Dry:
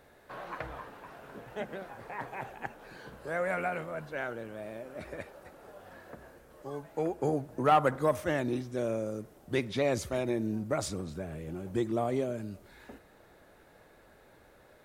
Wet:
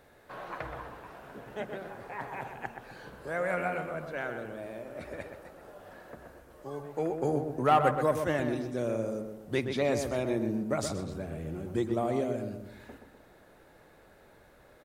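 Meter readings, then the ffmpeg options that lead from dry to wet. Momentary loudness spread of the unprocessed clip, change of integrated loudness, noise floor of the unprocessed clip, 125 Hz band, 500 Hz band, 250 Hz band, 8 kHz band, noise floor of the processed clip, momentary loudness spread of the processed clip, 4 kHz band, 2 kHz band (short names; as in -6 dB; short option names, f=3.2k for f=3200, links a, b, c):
19 LU, +1.0 dB, -59 dBFS, +1.0 dB, +1.0 dB, +1.0 dB, 0.0 dB, -58 dBFS, 19 LU, +0.5 dB, +0.5 dB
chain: -filter_complex "[0:a]asplit=2[a][b];[b]adelay=125,lowpass=f=2k:p=1,volume=-6dB,asplit=2[c][d];[d]adelay=125,lowpass=f=2k:p=1,volume=0.44,asplit=2[e][f];[f]adelay=125,lowpass=f=2k:p=1,volume=0.44,asplit=2[g][h];[h]adelay=125,lowpass=f=2k:p=1,volume=0.44,asplit=2[i][j];[j]adelay=125,lowpass=f=2k:p=1,volume=0.44[k];[a][c][e][g][i][k]amix=inputs=6:normalize=0"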